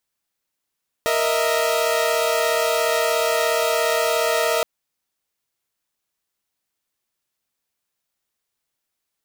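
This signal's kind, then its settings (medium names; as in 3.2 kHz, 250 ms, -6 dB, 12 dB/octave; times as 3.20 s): chord A#4/D#5/E5 saw, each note -20 dBFS 3.57 s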